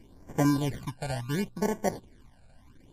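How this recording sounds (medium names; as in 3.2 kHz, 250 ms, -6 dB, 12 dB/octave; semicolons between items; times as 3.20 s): aliases and images of a low sample rate 1.3 kHz, jitter 0%; phasing stages 12, 0.71 Hz, lowest notch 330–4000 Hz; MP3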